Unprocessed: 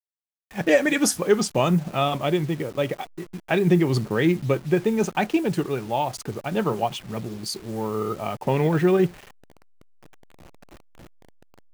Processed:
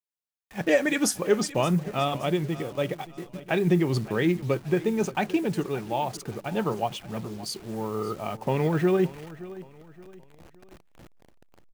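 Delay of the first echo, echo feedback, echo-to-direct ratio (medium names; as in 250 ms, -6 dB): 572 ms, 38%, -17.0 dB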